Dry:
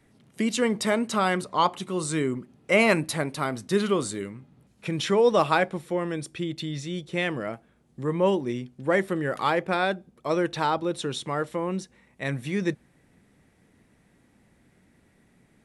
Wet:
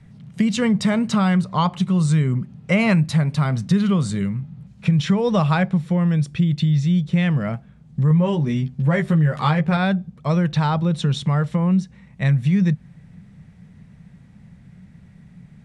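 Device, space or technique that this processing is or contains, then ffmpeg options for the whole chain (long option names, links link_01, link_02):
jukebox: -filter_complex "[0:a]asettb=1/sr,asplit=3[link_01][link_02][link_03];[link_01]atrim=end=8.094[link_04];[link_02]atrim=start=8.09:end=9.77,asetpts=PTS-STARTPTS,afade=type=in:duration=0.004:curve=qsin,afade=type=out:start_time=1.676:duration=0.004:curve=qsin,asplit=2[link_05][link_06];[link_06]adelay=13,volume=-3dB[link_07];[link_05][link_07]amix=inputs=2:normalize=0,atrim=end_sample=74088[link_08];[link_03]atrim=start=9.766[link_09];[link_04][link_08]acrossfade=duration=0.004:curve1=hsin:curve2=qsin[link_10];[link_10][link_09]acrossfade=duration=0.004:curve1=qsin:curve2=hsin,lowpass=6800,lowshelf=frequency=230:width_type=q:width=3:gain=10,acompressor=threshold=-21dB:ratio=3,volume=5dB"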